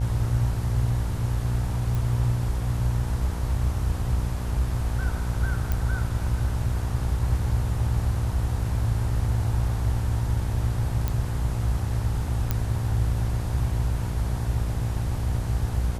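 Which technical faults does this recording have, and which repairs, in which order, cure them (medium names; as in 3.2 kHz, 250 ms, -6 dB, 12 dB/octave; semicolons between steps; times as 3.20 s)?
buzz 60 Hz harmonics 18 -29 dBFS
1.95 s: pop
5.72 s: pop
11.08 s: pop
12.51 s: pop -10 dBFS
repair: de-click; de-hum 60 Hz, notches 18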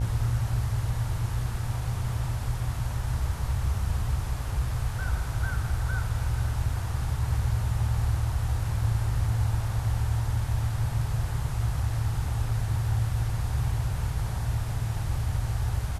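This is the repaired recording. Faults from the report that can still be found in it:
nothing left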